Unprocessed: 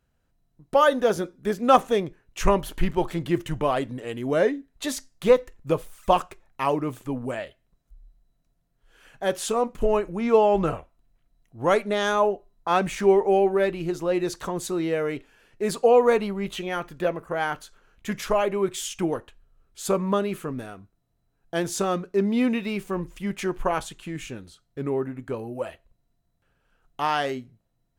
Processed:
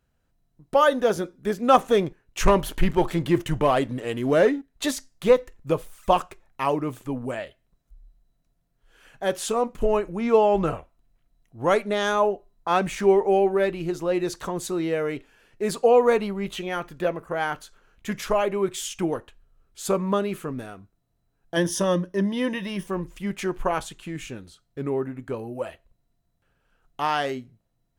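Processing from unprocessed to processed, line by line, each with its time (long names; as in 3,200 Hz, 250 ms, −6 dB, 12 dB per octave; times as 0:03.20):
0:01.88–0:04.91: leveller curve on the samples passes 1
0:21.56–0:22.87: EQ curve with evenly spaced ripples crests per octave 1.2, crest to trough 13 dB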